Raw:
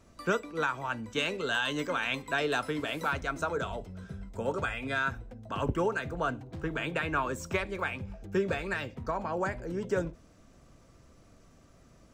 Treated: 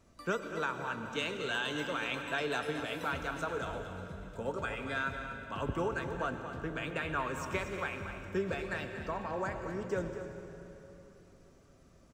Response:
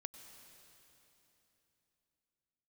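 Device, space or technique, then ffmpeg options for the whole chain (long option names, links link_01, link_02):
cave: -filter_complex "[0:a]aecho=1:1:234:0.299[link_01];[1:a]atrim=start_sample=2205[link_02];[link_01][link_02]afir=irnorm=-1:irlink=0"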